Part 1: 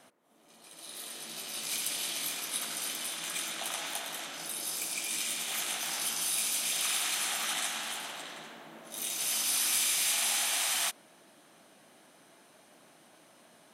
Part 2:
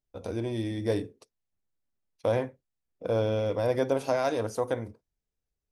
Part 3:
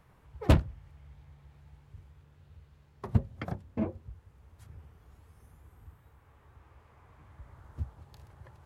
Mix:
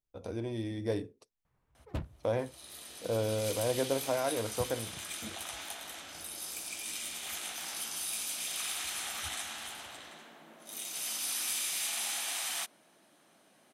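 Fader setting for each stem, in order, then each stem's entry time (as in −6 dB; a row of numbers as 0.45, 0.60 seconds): −5.5, −5.0, −15.5 decibels; 1.75, 0.00, 1.45 seconds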